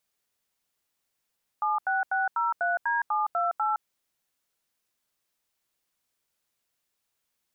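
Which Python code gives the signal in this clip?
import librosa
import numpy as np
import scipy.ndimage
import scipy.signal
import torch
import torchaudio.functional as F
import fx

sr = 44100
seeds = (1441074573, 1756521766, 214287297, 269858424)

y = fx.dtmf(sr, digits='76603D728', tone_ms=164, gap_ms=83, level_db=-26.0)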